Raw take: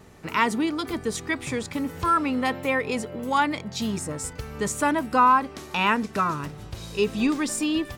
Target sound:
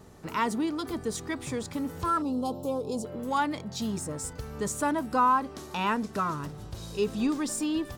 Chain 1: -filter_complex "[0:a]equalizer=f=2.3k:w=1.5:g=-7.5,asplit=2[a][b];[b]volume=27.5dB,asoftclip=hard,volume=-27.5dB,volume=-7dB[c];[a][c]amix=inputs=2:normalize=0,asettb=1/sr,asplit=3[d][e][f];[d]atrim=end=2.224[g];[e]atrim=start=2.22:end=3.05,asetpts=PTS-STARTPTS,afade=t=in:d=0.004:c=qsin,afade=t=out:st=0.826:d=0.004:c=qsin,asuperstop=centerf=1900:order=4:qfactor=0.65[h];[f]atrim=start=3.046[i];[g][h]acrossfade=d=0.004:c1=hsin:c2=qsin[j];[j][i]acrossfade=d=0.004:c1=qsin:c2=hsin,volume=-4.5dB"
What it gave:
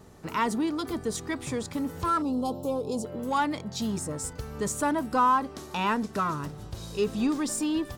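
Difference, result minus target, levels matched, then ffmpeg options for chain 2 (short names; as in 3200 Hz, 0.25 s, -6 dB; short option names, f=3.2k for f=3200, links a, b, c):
overloaded stage: distortion -4 dB
-filter_complex "[0:a]equalizer=f=2.3k:w=1.5:g=-7.5,asplit=2[a][b];[b]volume=38dB,asoftclip=hard,volume=-38dB,volume=-7dB[c];[a][c]amix=inputs=2:normalize=0,asettb=1/sr,asplit=3[d][e][f];[d]atrim=end=2.224[g];[e]atrim=start=2.22:end=3.05,asetpts=PTS-STARTPTS,afade=t=in:d=0.004:c=qsin,afade=t=out:st=0.826:d=0.004:c=qsin,asuperstop=centerf=1900:order=4:qfactor=0.65[h];[f]atrim=start=3.046[i];[g][h]acrossfade=d=0.004:c1=hsin:c2=qsin[j];[j][i]acrossfade=d=0.004:c1=qsin:c2=hsin,volume=-4.5dB"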